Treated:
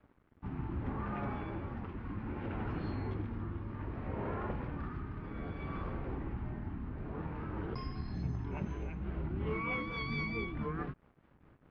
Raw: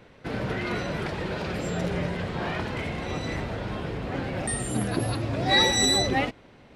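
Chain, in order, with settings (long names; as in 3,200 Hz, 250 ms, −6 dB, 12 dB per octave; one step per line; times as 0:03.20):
downward compressor 2 to 1, threshold −30 dBFS, peak gain reduction 8 dB
rotating-speaker cabinet horn 1.1 Hz, later 8 Hz, at 0:04.76
dead-zone distortion −57.5 dBFS
high-frequency loss of the air 120 metres
wrong playback speed 78 rpm record played at 45 rpm
level −4 dB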